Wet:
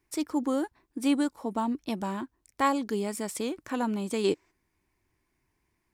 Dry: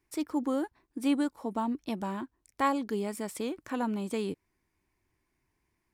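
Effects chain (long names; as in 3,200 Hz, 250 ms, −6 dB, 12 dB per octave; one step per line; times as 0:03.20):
dynamic equaliser 6,700 Hz, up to +5 dB, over −55 dBFS, Q 0.81
gain on a spectral selection 0:04.24–0:04.51, 300–8,400 Hz +10 dB
level +2 dB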